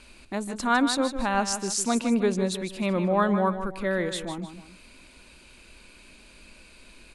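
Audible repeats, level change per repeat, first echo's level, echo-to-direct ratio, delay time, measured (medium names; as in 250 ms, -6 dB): 2, -8.5 dB, -10.0 dB, -9.5 dB, 154 ms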